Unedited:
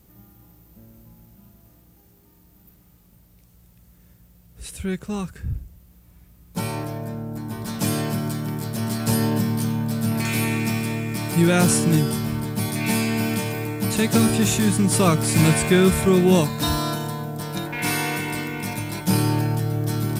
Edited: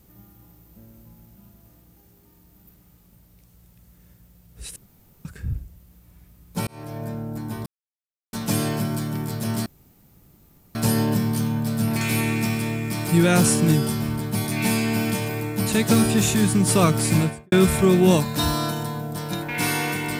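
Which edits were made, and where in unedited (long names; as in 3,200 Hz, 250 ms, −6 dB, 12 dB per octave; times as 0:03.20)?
0:04.76–0:05.25: fill with room tone
0:06.67–0:07.05: fade in
0:07.66: splice in silence 0.67 s
0:08.99: splice in room tone 1.09 s
0:15.25–0:15.76: fade out and dull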